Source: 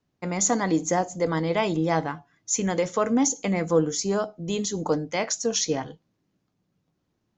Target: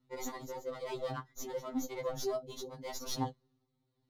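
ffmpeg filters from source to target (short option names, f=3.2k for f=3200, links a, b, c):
-filter_complex "[0:a]lowpass=f=6.4k:w=0.5412,lowpass=f=6.4k:w=1.3066,bandreject=f=650:w=15,volume=21dB,asoftclip=hard,volume=-21dB,areverse,acompressor=threshold=-32dB:ratio=20,areverse,atempo=1.8,tremolo=f=0.92:d=0.48,acrossover=split=3000[a][b];[b]aeval=exprs='max(val(0),0)':c=same[c];[a][c]amix=inputs=2:normalize=0,equalizer=f=1.6k:t=o:w=0.33:g=-9,equalizer=f=2.5k:t=o:w=0.33:g=-7,equalizer=f=4k:t=o:w=0.33:g=9,afftfilt=real='re*2.45*eq(mod(b,6),0)':imag='im*2.45*eq(mod(b,6),0)':win_size=2048:overlap=0.75,volume=3.5dB"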